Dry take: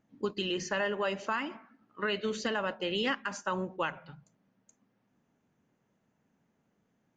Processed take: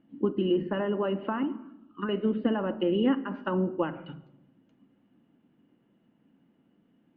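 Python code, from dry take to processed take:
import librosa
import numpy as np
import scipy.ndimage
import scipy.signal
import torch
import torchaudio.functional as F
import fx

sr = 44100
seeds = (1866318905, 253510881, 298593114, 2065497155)

y = scipy.signal.sosfilt(scipy.signal.butter(6, 3700.0, 'lowpass', fs=sr, output='sos'), x)
y = fx.small_body(y, sr, hz=(270.0, 2900.0), ring_ms=30, db=14)
y = fx.env_lowpass_down(y, sr, base_hz=1100.0, full_db=-26.5)
y = fx.fixed_phaser(y, sr, hz=2000.0, stages=6, at=(1.43, 2.09))
y = fx.room_shoebox(y, sr, seeds[0], volume_m3=4000.0, walls='furnished', distance_m=0.8)
y = y * librosa.db_to_amplitude(1.0)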